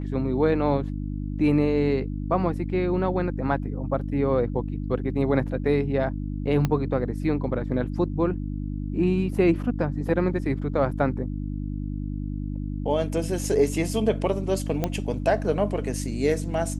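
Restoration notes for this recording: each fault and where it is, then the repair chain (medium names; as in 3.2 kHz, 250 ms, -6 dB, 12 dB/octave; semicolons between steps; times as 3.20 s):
hum 50 Hz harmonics 6 -30 dBFS
6.65 s: pop -11 dBFS
14.84 s: pop -11 dBFS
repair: de-click; de-hum 50 Hz, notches 6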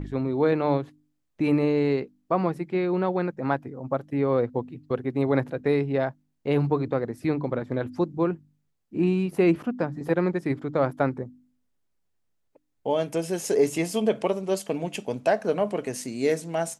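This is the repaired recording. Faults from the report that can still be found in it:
6.65 s: pop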